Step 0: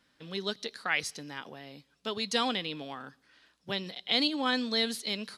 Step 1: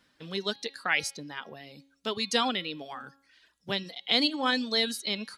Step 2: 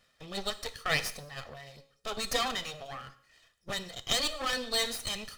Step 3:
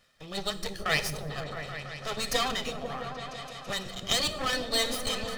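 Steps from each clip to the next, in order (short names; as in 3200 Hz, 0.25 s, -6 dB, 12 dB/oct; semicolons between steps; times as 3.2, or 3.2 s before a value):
reverb removal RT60 0.8 s; de-hum 275.2 Hz, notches 17; gain +3 dB
minimum comb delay 1.6 ms; non-linear reverb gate 0.24 s falling, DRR 12 dB
repeats that get brighter 0.166 s, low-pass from 200 Hz, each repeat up 1 oct, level 0 dB; gain +2 dB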